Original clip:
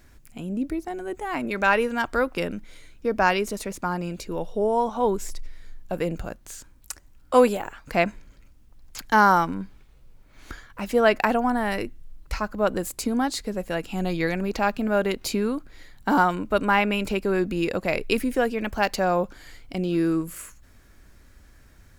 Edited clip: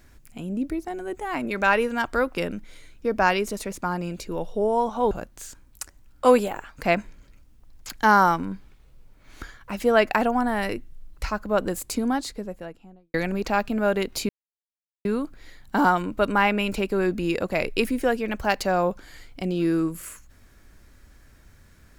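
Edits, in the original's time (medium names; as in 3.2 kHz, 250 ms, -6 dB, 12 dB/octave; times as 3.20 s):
5.11–6.20 s: delete
13.05–14.23 s: studio fade out
15.38 s: insert silence 0.76 s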